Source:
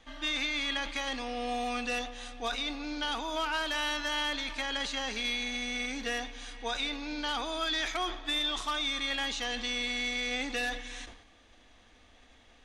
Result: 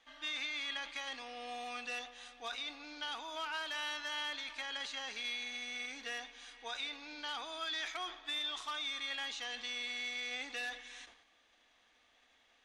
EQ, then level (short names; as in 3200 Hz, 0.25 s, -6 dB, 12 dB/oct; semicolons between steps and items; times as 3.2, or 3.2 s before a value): LPF 2600 Hz 6 dB/oct; tilt +2.5 dB/oct; low shelf 360 Hz -8 dB; -7.0 dB